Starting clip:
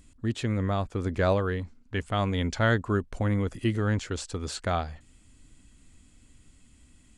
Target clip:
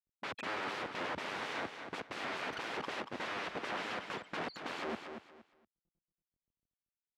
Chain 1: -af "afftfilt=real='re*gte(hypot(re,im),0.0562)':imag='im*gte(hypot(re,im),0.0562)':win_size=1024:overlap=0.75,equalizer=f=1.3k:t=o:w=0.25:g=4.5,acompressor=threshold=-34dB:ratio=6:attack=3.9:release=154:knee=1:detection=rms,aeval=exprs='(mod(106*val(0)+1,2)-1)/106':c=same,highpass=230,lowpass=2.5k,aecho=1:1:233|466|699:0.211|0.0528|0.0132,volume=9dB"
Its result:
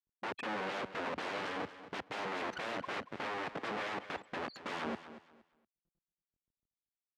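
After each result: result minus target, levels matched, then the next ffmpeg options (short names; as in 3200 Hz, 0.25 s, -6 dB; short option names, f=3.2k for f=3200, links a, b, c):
compressor: peak gain reduction +7 dB; echo-to-direct -6 dB
-af "afftfilt=real='re*gte(hypot(re,im),0.0562)':imag='im*gte(hypot(re,im),0.0562)':win_size=1024:overlap=0.75,equalizer=f=1.3k:t=o:w=0.25:g=4.5,acompressor=threshold=-25.5dB:ratio=6:attack=3.9:release=154:knee=1:detection=rms,aeval=exprs='(mod(106*val(0)+1,2)-1)/106':c=same,highpass=230,lowpass=2.5k,aecho=1:1:233|466|699:0.211|0.0528|0.0132,volume=9dB"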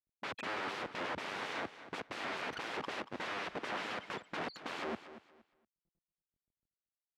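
echo-to-direct -6 dB
-af "afftfilt=real='re*gte(hypot(re,im),0.0562)':imag='im*gte(hypot(re,im),0.0562)':win_size=1024:overlap=0.75,equalizer=f=1.3k:t=o:w=0.25:g=4.5,acompressor=threshold=-25.5dB:ratio=6:attack=3.9:release=154:knee=1:detection=rms,aeval=exprs='(mod(106*val(0)+1,2)-1)/106':c=same,highpass=230,lowpass=2.5k,aecho=1:1:233|466|699:0.422|0.105|0.0264,volume=9dB"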